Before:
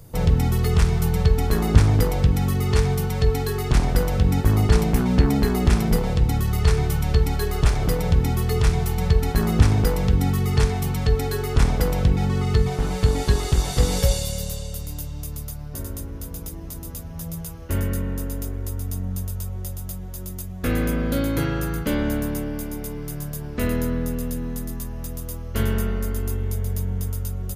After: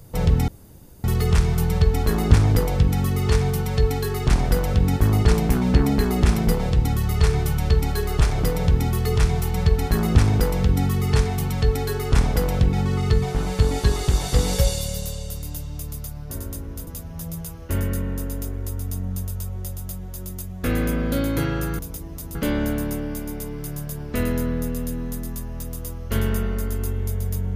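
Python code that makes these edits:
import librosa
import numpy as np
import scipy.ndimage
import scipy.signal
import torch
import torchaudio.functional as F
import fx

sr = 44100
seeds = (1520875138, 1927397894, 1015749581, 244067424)

y = fx.edit(x, sr, fx.insert_room_tone(at_s=0.48, length_s=0.56),
    fx.move(start_s=16.31, length_s=0.56, to_s=21.79), tone=tone)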